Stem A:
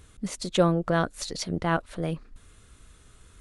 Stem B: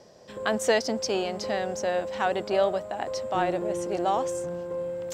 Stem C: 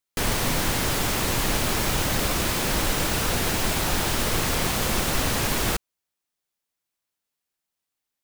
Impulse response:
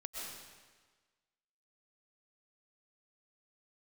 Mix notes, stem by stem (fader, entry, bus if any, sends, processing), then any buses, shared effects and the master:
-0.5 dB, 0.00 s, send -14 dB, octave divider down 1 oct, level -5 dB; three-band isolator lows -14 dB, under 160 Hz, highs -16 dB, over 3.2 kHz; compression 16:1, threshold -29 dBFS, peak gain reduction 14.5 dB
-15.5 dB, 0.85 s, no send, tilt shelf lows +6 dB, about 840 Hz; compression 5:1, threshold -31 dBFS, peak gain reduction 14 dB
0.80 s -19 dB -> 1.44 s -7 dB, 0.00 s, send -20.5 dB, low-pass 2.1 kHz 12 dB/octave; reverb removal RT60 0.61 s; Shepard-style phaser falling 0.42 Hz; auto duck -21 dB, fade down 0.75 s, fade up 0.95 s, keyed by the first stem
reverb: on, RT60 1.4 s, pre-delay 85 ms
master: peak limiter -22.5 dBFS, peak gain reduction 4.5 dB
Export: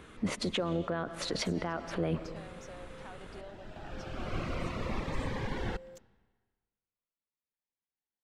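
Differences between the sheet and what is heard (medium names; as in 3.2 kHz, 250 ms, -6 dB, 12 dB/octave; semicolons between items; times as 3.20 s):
stem A -0.5 dB -> +7.5 dB; stem B: missing tilt shelf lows +6 dB, about 840 Hz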